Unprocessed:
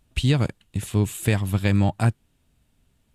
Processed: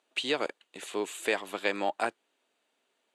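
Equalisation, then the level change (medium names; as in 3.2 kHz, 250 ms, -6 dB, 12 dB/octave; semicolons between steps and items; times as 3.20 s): high-pass 390 Hz 24 dB/octave; distance through air 64 m; band-stop 5.3 kHz, Q 11; 0.0 dB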